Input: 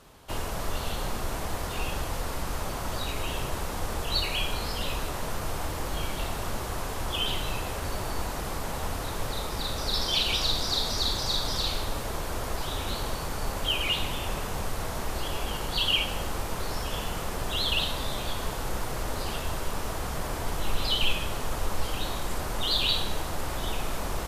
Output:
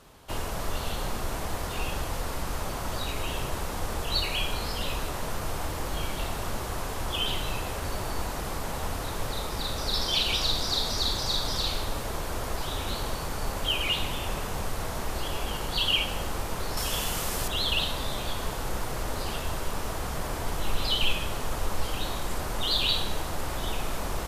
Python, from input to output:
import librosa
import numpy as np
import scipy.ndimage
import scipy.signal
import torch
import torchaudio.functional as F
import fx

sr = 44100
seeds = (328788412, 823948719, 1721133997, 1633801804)

y = fx.high_shelf(x, sr, hz=3200.0, db=10.0, at=(16.77, 17.48))